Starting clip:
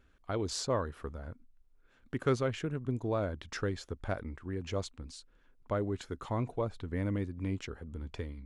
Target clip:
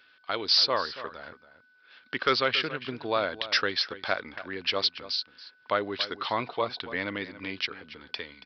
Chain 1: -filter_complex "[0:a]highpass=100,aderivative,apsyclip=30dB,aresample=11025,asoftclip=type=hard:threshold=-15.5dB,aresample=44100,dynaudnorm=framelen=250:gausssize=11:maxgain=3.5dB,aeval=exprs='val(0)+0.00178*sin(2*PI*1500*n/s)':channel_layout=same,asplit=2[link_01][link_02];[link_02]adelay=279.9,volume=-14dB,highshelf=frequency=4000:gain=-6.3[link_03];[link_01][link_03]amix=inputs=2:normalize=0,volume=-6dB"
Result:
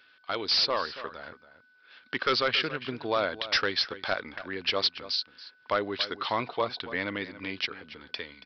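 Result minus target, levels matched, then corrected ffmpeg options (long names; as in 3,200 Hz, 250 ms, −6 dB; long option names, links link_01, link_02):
hard clipping: distortion +11 dB
-filter_complex "[0:a]highpass=100,aderivative,apsyclip=30dB,aresample=11025,asoftclip=type=hard:threshold=-8.5dB,aresample=44100,dynaudnorm=framelen=250:gausssize=11:maxgain=3.5dB,aeval=exprs='val(0)+0.00178*sin(2*PI*1500*n/s)':channel_layout=same,asplit=2[link_01][link_02];[link_02]adelay=279.9,volume=-14dB,highshelf=frequency=4000:gain=-6.3[link_03];[link_01][link_03]amix=inputs=2:normalize=0,volume=-6dB"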